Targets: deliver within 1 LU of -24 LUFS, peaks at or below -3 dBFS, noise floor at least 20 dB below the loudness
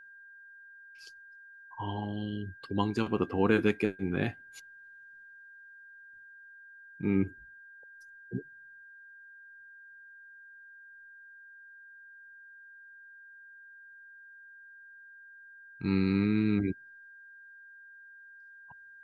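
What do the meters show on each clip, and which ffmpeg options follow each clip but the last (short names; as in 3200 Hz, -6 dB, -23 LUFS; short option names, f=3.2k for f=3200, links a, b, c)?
steady tone 1600 Hz; tone level -50 dBFS; loudness -31.0 LUFS; peak -11.0 dBFS; loudness target -24.0 LUFS
-> -af "bandreject=f=1.6k:w=30"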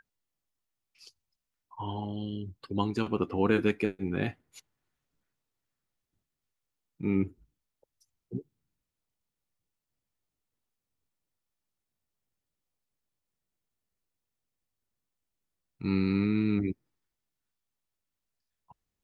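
steady tone none; loudness -31.0 LUFS; peak -11.0 dBFS; loudness target -24.0 LUFS
-> -af "volume=7dB"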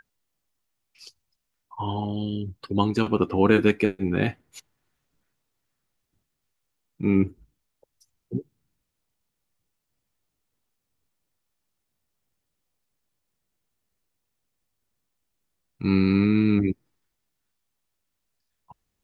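loudness -24.0 LUFS; peak -4.0 dBFS; noise floor -80 dBFS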